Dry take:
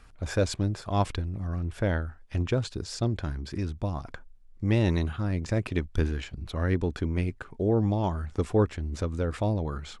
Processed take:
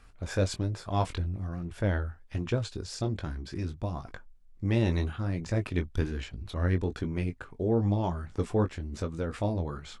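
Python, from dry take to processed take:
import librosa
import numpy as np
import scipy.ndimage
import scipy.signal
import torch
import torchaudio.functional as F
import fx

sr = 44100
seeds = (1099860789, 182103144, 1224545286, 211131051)

y = fx.chorus_voices(x, sr, voices=2, hz=1.2, base_ms=20, depth_ms=3.0, mix_pct=30)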